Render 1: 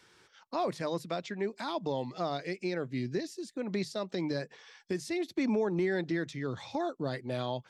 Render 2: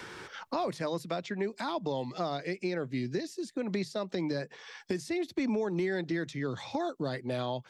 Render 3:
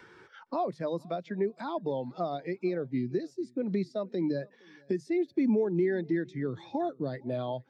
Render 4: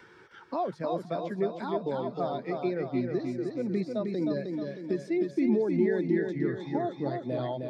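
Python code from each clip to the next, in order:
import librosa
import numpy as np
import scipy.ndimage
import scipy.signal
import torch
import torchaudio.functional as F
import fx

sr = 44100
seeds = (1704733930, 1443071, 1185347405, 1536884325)

y1 = fx.band_squash(x, sr, depth_pct=70)
y2 = fx.echo_feedback(y1, sr, ms=464, feedback_pct=38, wet_db=-19)
y2 = fx.spectral_expand(y2, sr, expansion=1.5)
y2 = F.gain(torch.from_numpy(y2), 1.0).numpy()
y3 = fx.echo_feedback(y2, sr, ms=311, feedback_pct=51, wet_db=-4.5)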